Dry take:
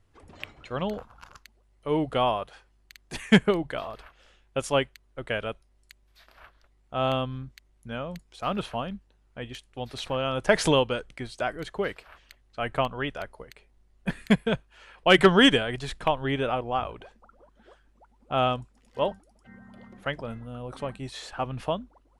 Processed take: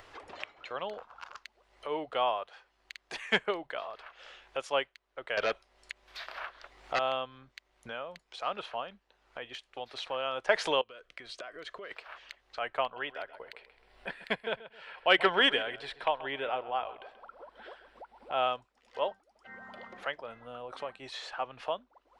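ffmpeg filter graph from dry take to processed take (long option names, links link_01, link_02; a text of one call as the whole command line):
ffmpeg -i in.wav -filter_complex "[0:a]asettb=1/sr,asplit=3[link_01][link_02][link_03];[link_01]atrim=end=5.374[link_04];[link_02]atrim=start=5.37:end=6.99,asetpts=PTS-STARTPTS,afade=type=in:duration=0.004:curve=qsin,afade=type=out:start_time=1.616:duration=0.004:curve=qsin,acrossover=split=3300[link_05][link_06];[link_06]acompressor=threshold=-57dB:ratio=4:attack=1:release=60[link_07];[link_05][link_07]amix=inputs=2:normalize=0,aeval=exprs='0.126*sin(PI/2*3.16*val(0)/0.126)':channel_layout=same[link_08];[link_03]atrim=start=6.986[link_09];[link_04][link_08]acrossfade=duration=0.004:curve1=hsin:curve2=qsin[link_10];[link_10][link_09]acrossfade=duration=0.004:curve1=qsin:curve2=hsin,asettb=1/sr,asplit=3[link_11][link_12][link_13];[link_11]atrim=end=10.814[link_14];[link_12]atrim=start=10.81:end=11.91,asetpts=PTS-STARTPTS,afade=type=in:duration=0.004:curve=qsin,afade=type=out:start_time=1.096:duration=0.004:curve=qsin,acompressor=threshold=-38dB:ratio=12:attack=3.2:release=140:knee=1:detection=peak,asuperstop=centerf=840:order=4:qfactor=3.9[link_15];[link_13]atrim=start=11.906[link_16];[link_14][link_15]acrossfade=duration=0.004:curve1=hsin:curve2=qsin[link_17];[link_17][link_16]acrossfade=duration=0.004:curve1=qsin:curve2=hsin,asettb=1/sr,asplit=3[link_18][link_19][link_20];[link_18]atrim=end=12.834[link_21];[link_19]atrim=start=12.83:end=18.42,asetpts=PTS-STARTPTS,afade=type=in:duration=0.004:curve=qsin,afade=type=out:start_time=5.586:duration=0.004:curve=qsin,equalizer=frequency=6500:width=5:gain=-14.5,bandreject=frequency=1200:width=11,asplit=2[link_22][link_23];[link_23]adelay=132,lowpass=frequency=4700:poles=1,volume=-15.5dB,asplit=2[link_24][link_25];[link_25]adelay=132,lowpass=frequency=4700:poles=1,volume=0.25,asplit=2[link_26][link_27];[link_27]adelay=132,lowpass=frequency=4700:poles=1,volume=0.25[link_28];[link_22][link_24][link_26][link_28]amix=inputs=4:normalize=0,atrim=end_sample=246519[link_29];[link_20]atrim=start=18.416[link_30];[link_21][link_29]acrossfade=duration=0.004:curve1=hsin:curve2=qsin[link_31];[link_31][link_30]acrossfade=duration=0.004:curve1=qsin:curve2=hsin,acrossover=split=430 5600:gain=0.0794 1 0.141[link_32][link_33][link_34];[link_32][link_33][link_34]amix=inputs=3:normalize=0,acompressor=mode=upward:threshold=-32dB:ratio=2.5,volume=-3.5dB" out.wav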